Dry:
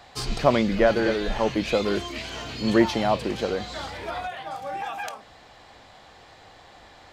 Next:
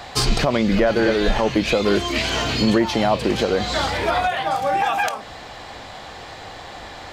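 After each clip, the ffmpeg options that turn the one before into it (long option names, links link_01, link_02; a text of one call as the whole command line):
ffmpeg -i in.wav -filter_complex "[0:a]asplit=2[link_01][link_02];[link_02]acompressor=threshold=-30dB:ratio=6,volume=3dB[link_03];[link_01][link_03]amix=inputs=2:normalize=0,alimiter=limit=-13dB:level=0:latency=1:release=221,volume=5.5dB" out.wav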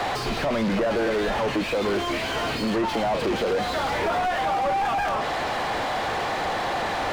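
ffmpeg -i in.wav -filter_complex "[0:a]acompressor=threshold=-28dB:ratio=3,asplit=2[link_01][link_02];[link_02]highpass=frequency=720:poles=1,volume=35dB,asoftclip=type=tanh:threshold=-15.5dB[link_03];[link_01][link_03]amix=inputs=2:normalize=0,lowpass=frequency=1000:poles=1,volume=-6dB" out.wav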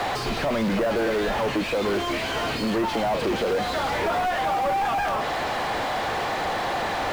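ffmpeg -i in.wav -af "acrusher=bits=7:mode=log:mix=0:aa=0.000001" out.wav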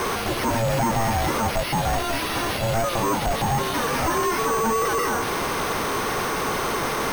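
ffmpeg -i in.wav -af "aeval=exprs='val(0)*sin(2*PI*340*n/s)':channel_layout=same,acrusher=samples=6:mix=1:aa=0.000001,volume=4.5dB" out.wav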